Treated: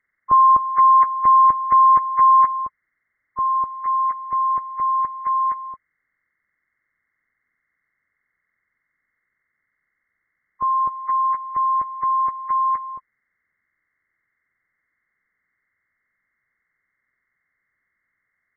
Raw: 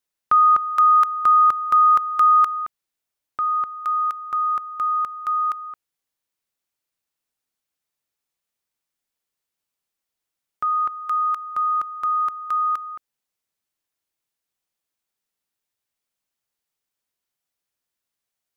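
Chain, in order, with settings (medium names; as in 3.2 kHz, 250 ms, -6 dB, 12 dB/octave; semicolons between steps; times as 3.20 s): knee-point frequency compression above 1 kHz 4:1; bass shelf 440 Hz +11 dB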